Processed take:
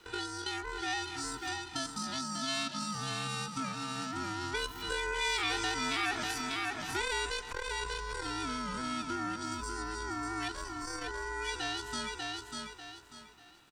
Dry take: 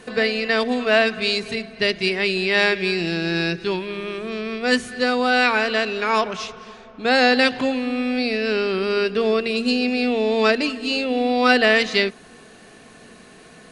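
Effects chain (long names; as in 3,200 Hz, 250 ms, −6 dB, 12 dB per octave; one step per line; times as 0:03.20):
source passing by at 0:05.72, 6 m/s, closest 5.9 metres
notch comb filter 1,200 Hz
pitch shifter +11.5 semitones
in parallel at +2.5 dB: brickwall limiter −17.5 dBFS, peak gain reduction 8 dB
on the sum: high-shelf EQ 6,700 Hz −8.5 dB
on a send: repeating echo 593 ms, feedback 27%, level −7 dB
on the sum: downward compressor 2.5 to 1, threshold −31 dBFS, peak gain reduction 12 dB
high-pass filter 670 Hz 6 dB per octave
ring modulation 530 Hz
saturating transformer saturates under 420 Hz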